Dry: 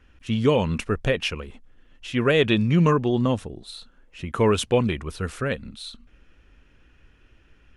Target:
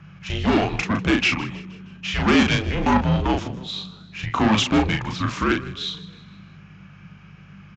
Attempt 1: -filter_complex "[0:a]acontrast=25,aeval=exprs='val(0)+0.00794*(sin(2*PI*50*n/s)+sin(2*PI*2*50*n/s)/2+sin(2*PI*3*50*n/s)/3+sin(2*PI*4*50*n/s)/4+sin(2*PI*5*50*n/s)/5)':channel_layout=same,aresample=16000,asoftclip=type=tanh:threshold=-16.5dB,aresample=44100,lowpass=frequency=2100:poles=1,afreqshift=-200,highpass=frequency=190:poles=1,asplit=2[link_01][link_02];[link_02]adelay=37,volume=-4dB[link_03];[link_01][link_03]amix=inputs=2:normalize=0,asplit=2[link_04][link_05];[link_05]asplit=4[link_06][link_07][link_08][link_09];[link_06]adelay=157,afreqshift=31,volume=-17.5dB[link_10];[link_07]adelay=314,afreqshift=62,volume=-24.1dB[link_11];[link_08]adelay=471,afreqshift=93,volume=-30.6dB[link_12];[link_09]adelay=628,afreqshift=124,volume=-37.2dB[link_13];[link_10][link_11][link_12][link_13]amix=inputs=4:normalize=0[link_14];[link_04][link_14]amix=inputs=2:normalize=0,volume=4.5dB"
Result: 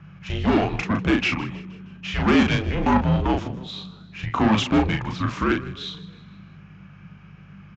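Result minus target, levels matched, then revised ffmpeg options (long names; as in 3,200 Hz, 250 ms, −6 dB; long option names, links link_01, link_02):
8,000 Hz band −6.0 dB
-filter_complex "[0:a]acontrast=25,aeval=exprs='val(0)+0.00794*(sin(2*PI*50*n/s)+sin(2*PI*2*50*n/s)/2+sin(2*PI*3*50*n/s)/3+sin(2*PI*4*50*n/s)/4+sin(2*PI*5*50*n/s)/5)':channel_layout=same,aresample=16000,asoftclip=type=tanh:threshold=-16.5dB,aresample=44100,lowpass=frequency=5900:poles=1,afreqshift=-200,highpass=frequency=190:poles=1,asplit=2[link_01][link_02];[link_02]adelay=37,volume=-4dB[link_03];[link_01][link_03]amix=inputs=2:normalize=0,asplit=2[link_04][link_05];[link_05]asplit=4[link_06][link_07][link_08][link_09];[link_06]adelay=157,afreqshift=31,volume=-17.5dB[link_10];[link_07]adelay=314,afreqshift=62,volume=-24.1dB[link_11];[link_08]adelay=471,afreqshift=93,volume=-30.6dB[link_12];[link_09]adelay=628,afreqshift=124,volume=-37.2dB[link_13];[link_10][link_11][link_12][link_13]amix=inputs=4:normalize=0[link_14];[link_04][link_14]amix=inputs=2:normalize=0,volume=4.5dB"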